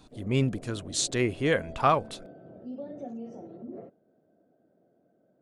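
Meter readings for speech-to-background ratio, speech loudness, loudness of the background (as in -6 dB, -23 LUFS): 16.5 dB, -27.5 LUFS, -44.0 LUFS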